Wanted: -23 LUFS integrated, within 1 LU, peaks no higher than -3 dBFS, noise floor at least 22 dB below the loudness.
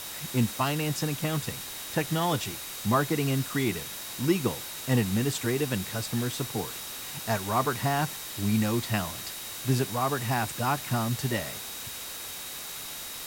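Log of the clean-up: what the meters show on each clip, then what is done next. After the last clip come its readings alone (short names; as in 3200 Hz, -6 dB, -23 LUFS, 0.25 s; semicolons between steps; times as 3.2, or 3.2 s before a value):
steady tone 3800 Hz; tone level -46 dBFS; noise floor -39 dBFS; noise floor target -52 dBFS; loudness -29.5 LUFS; peak -11.5 dBFS; loudness target -23.0 LUFS
-> notch 3800 Hz, Q 30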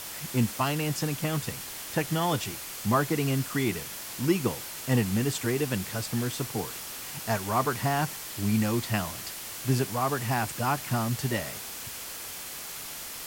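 steady tone none; noise floor -39 dBFS; noise floor target -52 dBFS
-> noise print and reduce 13 dB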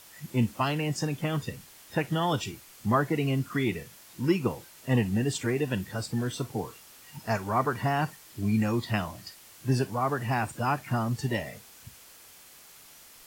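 noise floor -52 dBFS; loudness -29.5 LUFS; peak -11.5 dBFS; loudness target -23.0 LUFS
-> gain +6.5 dB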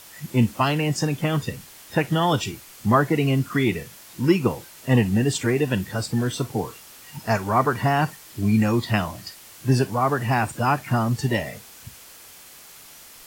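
loudness -23.0 LUFS; peak -5.0 dBFS; noise floor -46 dBFS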